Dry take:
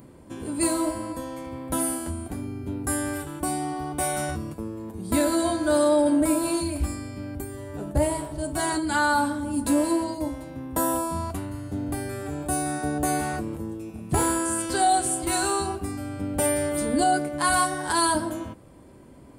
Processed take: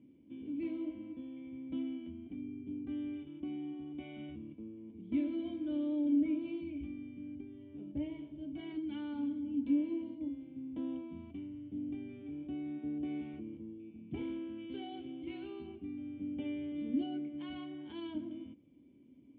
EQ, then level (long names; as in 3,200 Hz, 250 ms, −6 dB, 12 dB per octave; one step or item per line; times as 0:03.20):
formant resonators in series i
high-pass filter 63 Hz
low-shelf EQ 320 Hz −7.5 dB
−1.5 dB